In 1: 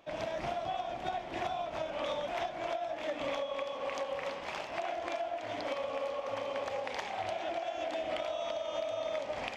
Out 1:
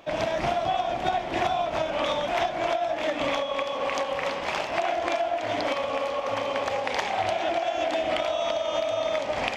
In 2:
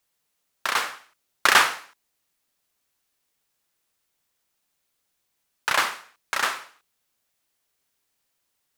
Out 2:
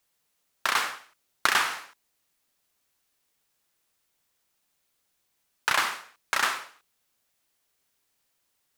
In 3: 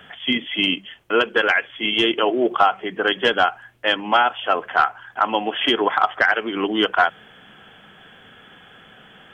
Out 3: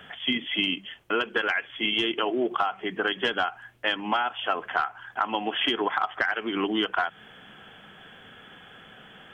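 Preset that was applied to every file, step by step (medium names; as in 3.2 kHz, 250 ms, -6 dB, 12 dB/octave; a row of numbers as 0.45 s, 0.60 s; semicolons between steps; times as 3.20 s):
dynamic bell 530 Hz, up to -5 dB, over -39 dBFS, Q 2.4; compression 6:1, threshold -20 dBFS; normalise loudness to -27 LUFS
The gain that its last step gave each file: +10.5 dB, +1.0 dB, -2.0 dB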